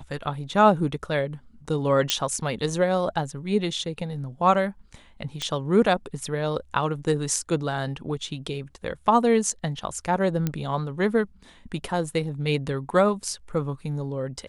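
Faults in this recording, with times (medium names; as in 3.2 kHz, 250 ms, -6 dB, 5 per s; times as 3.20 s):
2.10 s: pop -4 dBFS
5.42 s: pop -15 dBFS
10.47 s: pop -12 dBFS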